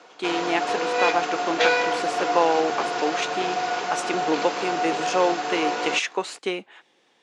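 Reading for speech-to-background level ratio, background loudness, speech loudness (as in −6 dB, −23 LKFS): −1.0 dB, −25.5 LKFS, −26.5 LKFS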